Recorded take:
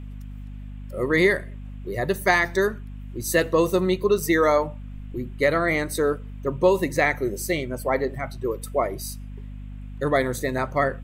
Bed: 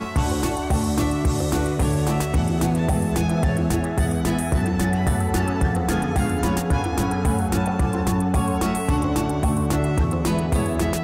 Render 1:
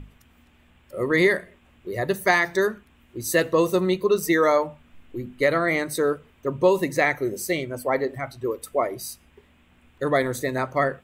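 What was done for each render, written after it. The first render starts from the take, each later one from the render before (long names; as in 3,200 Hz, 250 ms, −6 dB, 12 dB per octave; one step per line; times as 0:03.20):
mains-hum notches 50/100/150/200/250 Hz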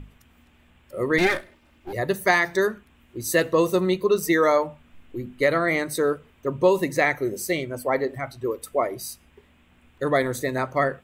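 0:01.18–0:01.93: lower of the sound and its delayed copy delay 3.3 ms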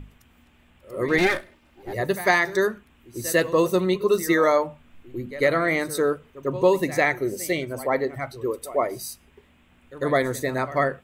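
echo ahead of the sound 99 ms −16 dB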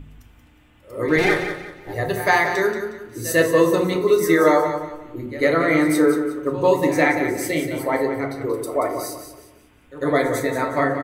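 repeating echo 181 ms, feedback 33%, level −9 dB
feedback delay network reverb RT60 0.71 s, low-frequency decay 1.2×, high-frequency decay 0.45×, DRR 1.5 dB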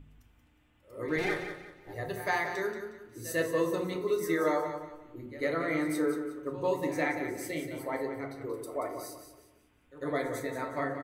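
level −13 dB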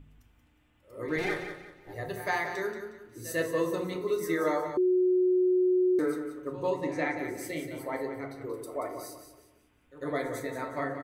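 0:04.77–0:05.99: beep over 366 Hz −21 dBFS
0:06.70–0:07.19: high-frequency loss of the air 62 metres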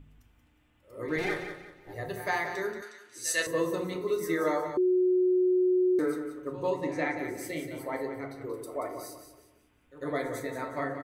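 0:02.82–0:03.47: meter weighting curve ITU-R 468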